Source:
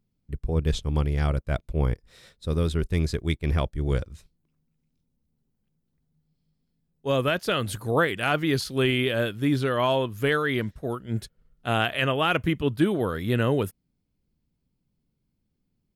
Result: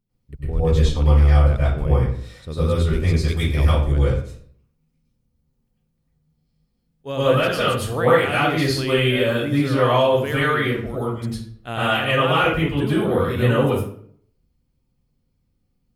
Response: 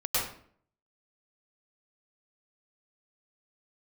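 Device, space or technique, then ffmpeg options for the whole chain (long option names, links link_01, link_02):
bathroom: -filter_complex "[1:a]atrim=start_sample=2205[link_01];[0:a][link_01]afir=irnorm=-1:irlink=0,asettb=1/sr,asplit=3[link_02][link_03][link_04];[link_02]atrim=end=3.284[link_05];[link_03]atrim=start=3.28:end=3.92,asetpts=PTS-STARTPTS,afade=type=in:duration=0.004:curve=qsin,afade=type=out:start_time=0.636:duration=0.004:curve=qsin,aemphasis=mode=production:type=cd[link_06];[link_04]atrim=start=3.916[link_07];[link_05][link_06]acrossfade=duration=0.004:curve1=hsin:curve2=qsin[link_08];[link_08][link_07]acrossfade=duration=0.004:curve1=qsin:curve2=hsin,volume=-3.5dB"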